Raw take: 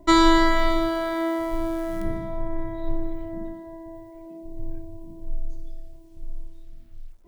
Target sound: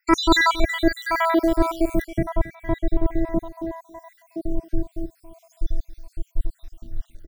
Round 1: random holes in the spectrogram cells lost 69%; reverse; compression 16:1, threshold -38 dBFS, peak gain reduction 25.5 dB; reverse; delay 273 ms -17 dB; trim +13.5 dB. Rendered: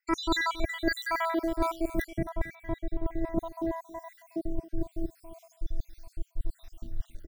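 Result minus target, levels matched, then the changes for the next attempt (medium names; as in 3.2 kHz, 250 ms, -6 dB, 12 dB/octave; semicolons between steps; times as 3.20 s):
compression: peak gain reduction +11 dB
change: compression 16:1, threshold -26 dBFS, peak gain reduction 14.5 dB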